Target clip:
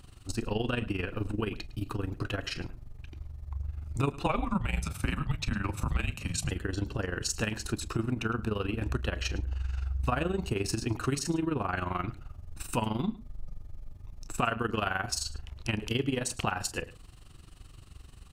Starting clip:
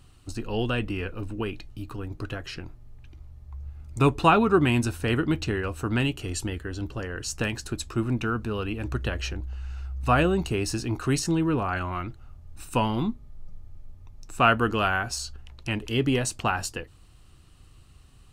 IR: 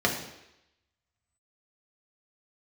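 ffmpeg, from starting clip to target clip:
-filter_complex "[0:a]asplit=2[s0][s1];[s1]adelay=28,volume=0.224[s2];[s0][s2]amix=inputs=2:normalize=0,tremolo=f=23:d=0.788,acompressor=threshold=0.0224:ratio=4,asettb=1/sr,asplit=3[s3][s4][s5];[s3]atrim=end=4.264[s6];[s4]atrim=start=4.26:end=6.51,asetpts=PTS-STARTPTS,afade=t=in:d=0.004:c=qsin,afade=t=out:st=2.246:d=0.004:c=qsin,afreqshift=-180[s7];[s5]atrim=start=6.506[s8];[s6][s7]acrossfade=d=0.004:c1=hsin:c2=qsin[s9];[s9][s8]acrossfade=d=0.004:c1=qsin:c2=hsin,aecho=1:1:107:0.112,volume=1.88"

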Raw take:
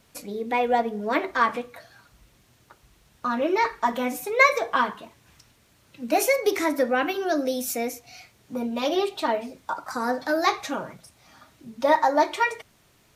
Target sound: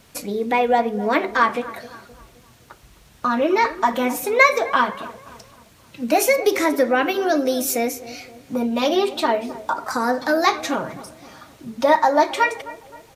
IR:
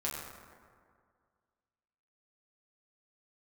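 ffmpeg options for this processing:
-filter_complex "[0:a]asplit=2[s0][s1];[s1]acompressor=threshold=0.0355:ratio=6,volume=1[s2];[s0][s2]amix=inputs=2:normalize=0,asplit=2[s3][s4];[s4]adelay=261,lowpass=f=1500:p=1,volume=0.158,asplit=2[s5][s6];[s6]adelay=261,lowpass=f=1500:p=1,volume=0.5,asplit=2[s7][s8];[s8]adelay=261,lowpass=f=1500:p=1,volume=0.5,asplit=2[s9][s10];[s10]adelay=261,lowpass=f=1500:p=1,volume=0.5[s11];[s3][s5][s7][s9][s11]amix=inputs=5:normalize=0,volume=1.26"

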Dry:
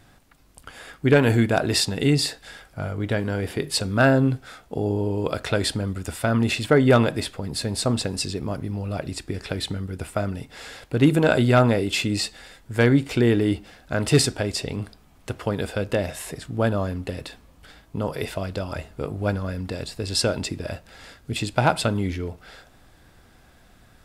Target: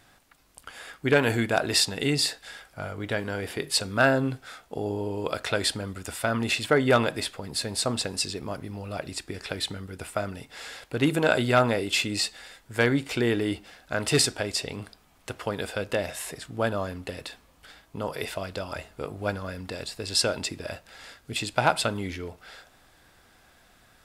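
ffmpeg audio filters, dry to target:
-af "lowshelf=f=390:g=-10"

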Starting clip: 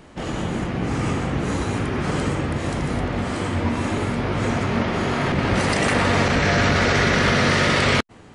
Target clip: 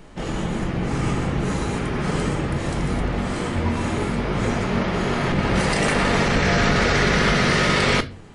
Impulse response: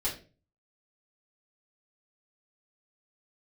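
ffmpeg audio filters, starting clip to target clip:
-filter_complex "[0:a]asplit=2[s0][s1];[1:a]atrim=start_sample=2205,lowshelf=f=120:g=9,highshelf=f=5900:g=10[s2];[s1][s2]afir=irnorm=-1:irlink=0,volume=0.2[s3];[s0][s3]amix=inputs=2:normalize=0,volume=0.794"

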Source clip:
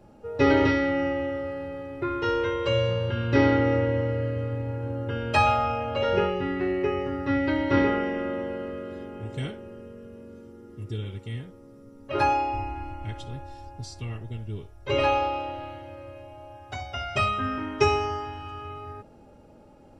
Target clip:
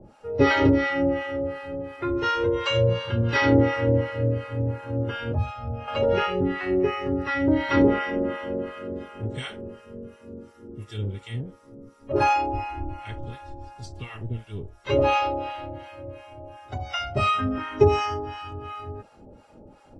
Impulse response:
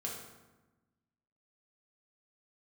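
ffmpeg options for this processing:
-filter_complex "[0:a]acrossover=split=750[s0][s1];[s0]aeval=exprs='val(0)*(1-1/2+1/2*cos(2*PI*2.8*n/s))':c=same[s2];[s1]aeval=exprs='val(0)*(1-1/2-1/2*cos(2*PI*2.8*n/s))':c=same[s3];[s2][s3]amix=inputs=2:normalize=0,asettb=1/sr,asplit=3[s4][s5][s6];[s4]atrim=end=5.324[s7];[s5]atrim=start=5.32:end=5.88,asetpts=PTS-STARTPTS,afade=t=in:d=0.004:c=qsin,afade=t=out:st=0.556:d=0.004:c=qsin,acrossover=split=180[s8][s9];[s9]acompressor=threshold=0.00794:ratio=8[s10];[s8][s10]amix=inputs=2:normalize=0[s11];[s6]atrim=start=5.876[s12];[s7][s11]acrossfade=d=0.004:c1=hsin:c2=qsin[s13];[s13][s12]acrossfade=d=0.004:c1=qsin:c2=hsin,volume=2.24" -ar 24000 -c:a aac -b:a 32k

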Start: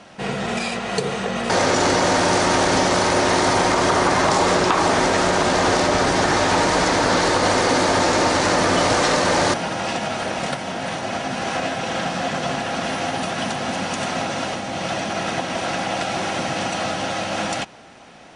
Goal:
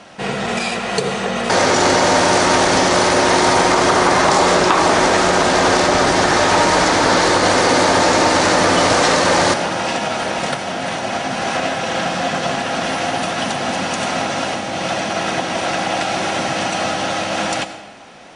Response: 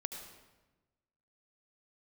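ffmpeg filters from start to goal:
-filter_complex "[0:a]asplit=2[s0][s1];[1:a]atrim=start_sample=2205,lowshelf=f=170:g=-12[s2];[s1][s2]afir=irnorm=-1:irlink=0,volume=1.06[s3];[s0][s3]amix=inputs=2:normalize=0,volume=0.891"

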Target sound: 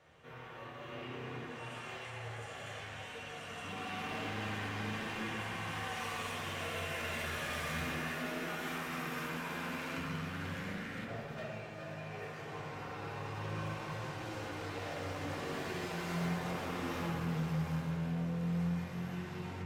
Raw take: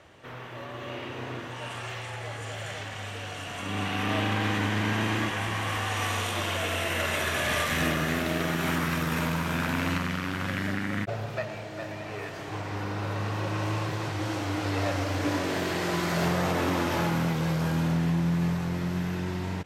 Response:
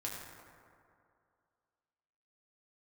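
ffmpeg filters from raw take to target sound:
-filter_complex "[0:a]asettb=1/sr,asplit=3[s0][s1][s2];[s0]atrim=end=7.874[s3];[s1]atrim=start=7.87:end=9.98,asetpts=PTS-STARTPTS,afade=t=in:d=0.004:c=qsin,afade=t=out:st=2.106:d=0.004:c=qsin,highpass=260[s4];[s2]atrim=start=9.976[s5];[s3][s4]acrossfade=d=0.004:c1=hsin:c2=qsin[s6];[s6][s5]acrossfade=d=0.004:c1=qsin:c2=hsin,volume=25.1,asoftclip=hard,volume=0.0398[s7];[1:a]atrim=start_sample=2205,asetrate=66150,aresample=44100[s8];[s7][s8]afir=irnorm=-1:irlink=0,volume=0.531"

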